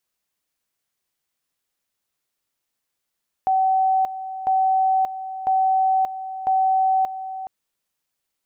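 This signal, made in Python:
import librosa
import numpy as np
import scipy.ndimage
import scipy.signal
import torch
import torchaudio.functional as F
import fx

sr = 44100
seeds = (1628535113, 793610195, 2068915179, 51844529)

y = fx.two_level_tone(sr, hz=761.0, level_db=-15.5, drop_db=12.5, high_s=0.58, low_s=0.42, rounds=4)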